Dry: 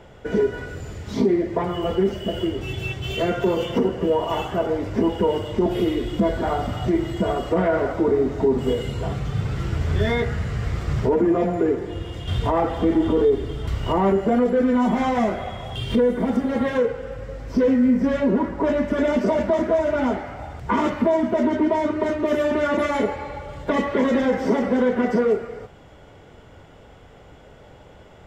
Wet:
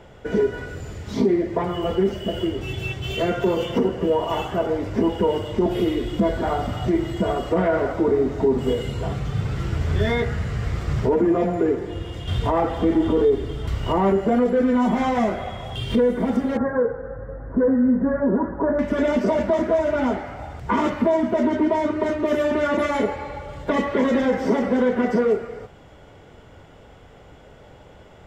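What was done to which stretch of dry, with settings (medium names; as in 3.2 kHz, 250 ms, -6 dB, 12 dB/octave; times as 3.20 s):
16.57–18.79 s: elliptic low-pass 1.7 kHz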